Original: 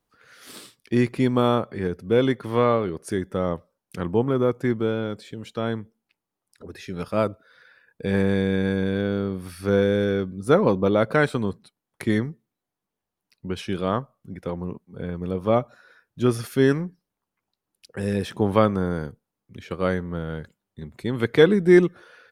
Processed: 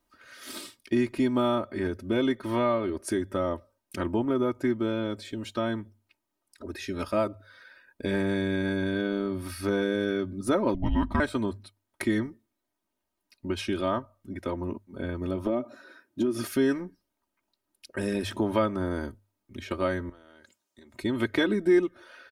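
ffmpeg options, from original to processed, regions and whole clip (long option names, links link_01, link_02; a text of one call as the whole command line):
ffmpeg -i in.wav -filter_complex "[0:a]asettb=1/sr,asplit=3[link_01][link_02][link_03];[link_01]atrim=end=10.744[link_04];[link_02]atrim=start=10.74:end=11.2,asetpts=PTS-STARTPTS,afade=type=in:duration=0.004:curve=qsin,afade=type=out:start_time=0.456:duration=0.004:curve=qsin,lowpass=frequency=3200:poles=1,afreqshift=-370[link_05];[link_03]atrim=start=11.196[link_06];[link_04][link_05]acrossfade=duration=0.004:curve1=hsin:curve2=qsin[link_07];[link_07][link_06]acrossfade=duration=0.004:curve1=qsin:curve2=hsin,asettb=1/sr,asplit=3[link_08][link_09][link_10];[link_08]atrim=end=15.464[link_11];[link_09]atrim=start=15.46:end=16.47,asetpts=PTS-STARTPTS,afade=type=in:duration=0.004:curve=qsin,afade=type=out:start_time=1.006:duration=0.004:curve=qsin,highpass=120,equalizer=frequency=300:width_type=o:width=1.2:gain=12.5,acompressor=threshold=-20dB:ratio=6:attack=3.2:release=140:knee=1:detection=peak[link_12];[link_10]atrim=start=16.466[link_13];[link_11][link_12]acrossfade=duration=0.004:curve1=hsin:curve2=qsin[link_14];[link_14][link_13]acrossfade=duration=0.004:curve1=qsin:curve2=hsin,asettb=1/sr,asplit=3[link_15][link_16][link_17];[link_15]atrim=end=20.094[link_18];[link_16]atrim=start=20.09:end=20.94,asetpts=PTS-STARTPTS,afade=type=in:duration=0.004:curve=qsin,afade=type=out:start_time=0.846:duration=0.004:curve=qsin,highpass=frequency=510:poles=1,equalizer=frequency=6500:width_type=o:width=0.93:gain=9.5,acompressor=threshold=-49dB:ratio=8:attack=3.2:release=140:knee=1:detection=peak[link_19];[link_17]atrim=start=20.936[link_20];[link_18][link_19]acrossfade=duration=0.004:curve1=hsin:curve2=qsin[link_21];[link_21][link_20]acrossfade=duration=0.004:curve1=qsin:curve2=hsin,bandreject=frequency=50:width_type=h:width=6,bandreject=frequency=100:width_type=h:width=6,aecho=1:1:3.2:0.85,acompressor=threshold=-27dB:ratio=2" out.wav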